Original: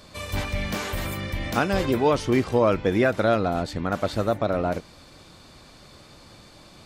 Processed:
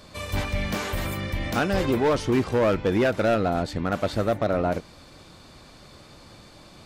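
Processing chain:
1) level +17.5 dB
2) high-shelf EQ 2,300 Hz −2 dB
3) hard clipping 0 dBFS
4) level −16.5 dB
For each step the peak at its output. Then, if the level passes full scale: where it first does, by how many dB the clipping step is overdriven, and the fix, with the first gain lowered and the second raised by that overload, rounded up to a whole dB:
+8.0, +8.0, 0.0, −16.5 dBFS
step 1, 8.0 dB
step 1 +9.5 dB, step 4 −8.5 dB

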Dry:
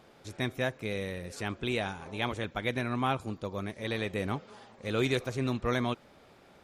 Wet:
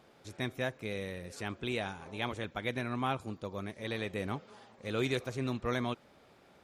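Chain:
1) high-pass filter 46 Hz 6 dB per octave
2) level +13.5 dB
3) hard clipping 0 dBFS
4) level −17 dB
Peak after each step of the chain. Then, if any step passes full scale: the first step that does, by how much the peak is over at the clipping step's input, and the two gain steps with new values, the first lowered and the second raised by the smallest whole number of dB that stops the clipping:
−15.5, −2.0, −2.0, −19.0 dBFS
no step passes full scale

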